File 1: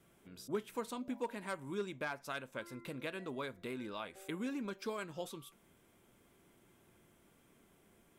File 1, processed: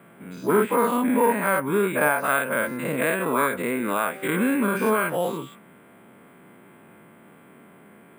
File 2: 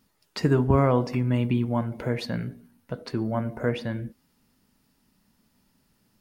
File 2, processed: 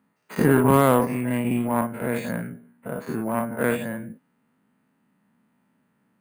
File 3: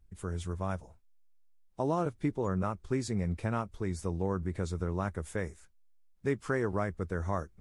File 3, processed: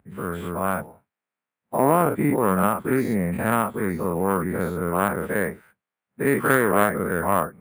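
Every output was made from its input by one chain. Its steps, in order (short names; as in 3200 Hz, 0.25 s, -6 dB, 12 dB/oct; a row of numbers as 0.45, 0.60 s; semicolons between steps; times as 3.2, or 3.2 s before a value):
spectral dilation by 0.12 s; Chebyshev band-pass 190–1900 Hz, order 2; bell 340 Hz -4.5 dB 0.47 oct; added harmonics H 7 -24 dB, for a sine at -6.5 dBFS; careless resampling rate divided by 4×, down filtered, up hold; match loudness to -23 LUFS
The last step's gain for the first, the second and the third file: +20.5, +3.0, +13.5 dB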